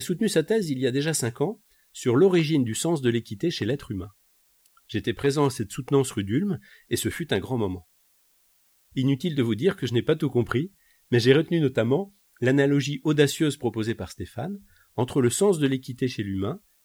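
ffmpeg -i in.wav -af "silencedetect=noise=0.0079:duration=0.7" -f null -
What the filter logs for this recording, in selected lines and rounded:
silence_start: 7.80
silence_end: 8.96 | silence_duration: 1.15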